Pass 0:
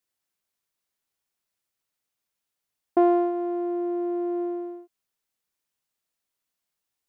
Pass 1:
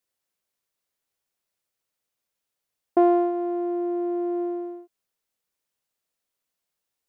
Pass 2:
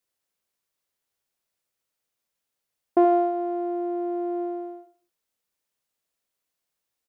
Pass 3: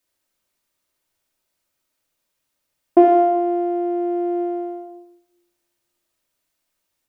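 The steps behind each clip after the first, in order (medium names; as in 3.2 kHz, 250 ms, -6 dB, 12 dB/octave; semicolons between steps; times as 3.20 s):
peaking EQ 520 Hz +4.5 dB 0.6 oct
feedback delay 76 ms, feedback 31%, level -11 dB
simulated room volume 2700 m³, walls furnished, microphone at 2.7 m; trim +5 dB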